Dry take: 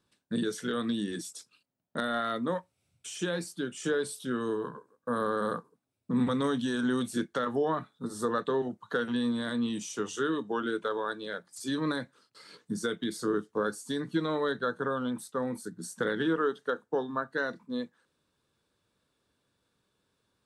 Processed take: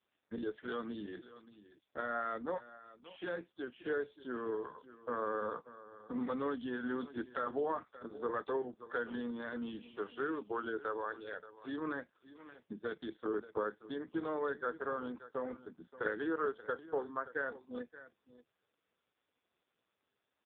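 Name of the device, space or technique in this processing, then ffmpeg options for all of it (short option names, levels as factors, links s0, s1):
satellite phone: -filter_complex "[0:a]asplit=3[s0][s1][s2];[s0]afade=t=out:st=8.62:d=0.02[s3];[s1]lowpass=8200,afade=t=in:st=8.62:d=0.02,afade=t=out:st=10.11:d=0.02[s4];[s2]afade=t=in:st=10.11:d=0.02[s5];[s3][s4][s5]amix=inputs=3:normalize=0,highpass=320,lowpass=3300,aecho=1:1:578:0.158,volume=0.596" -ar 8000 -c:a libopencore_amrnb -b:a 4750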